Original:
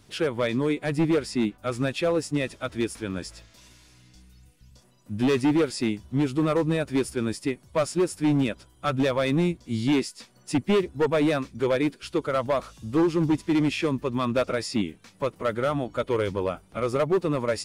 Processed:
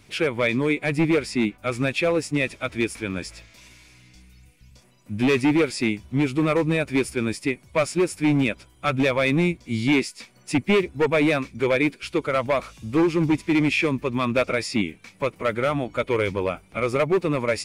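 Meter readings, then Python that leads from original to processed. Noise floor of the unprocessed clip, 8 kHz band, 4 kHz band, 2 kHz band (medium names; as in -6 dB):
-58 dBFS, +2.0 dB, +3.0 dB, +8.0 dB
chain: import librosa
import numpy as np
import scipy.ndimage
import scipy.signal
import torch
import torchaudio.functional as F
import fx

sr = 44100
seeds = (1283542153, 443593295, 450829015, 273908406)

y = fx.peak_eq(x, sr, hz=2300.0, db=11.0, octaves=0.36)
y = y * 10.0 ** (2.0 / 20.0)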